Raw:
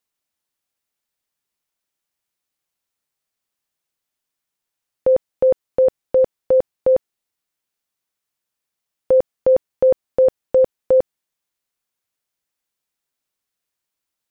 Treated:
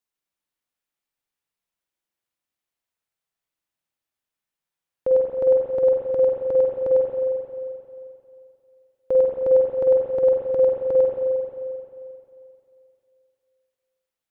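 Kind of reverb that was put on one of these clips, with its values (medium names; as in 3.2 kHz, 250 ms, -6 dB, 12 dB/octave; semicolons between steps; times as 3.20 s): spring tank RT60 2.7 s, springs 44/50 ms, chirp 45 ms, DRR -2 dB; trim -7.5 dB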